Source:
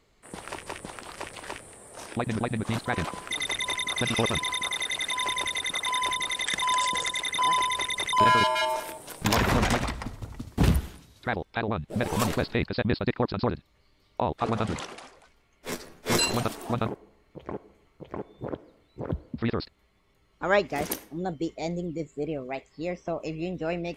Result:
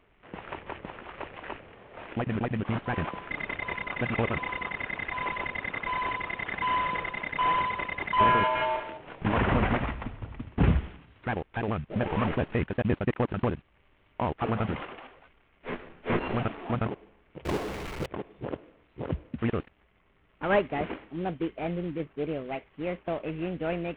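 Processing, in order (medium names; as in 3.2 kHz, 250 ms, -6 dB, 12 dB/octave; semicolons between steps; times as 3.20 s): CVSD coder 16 kbps; 17.45–18.06 s: power-law waveshaper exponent 0.35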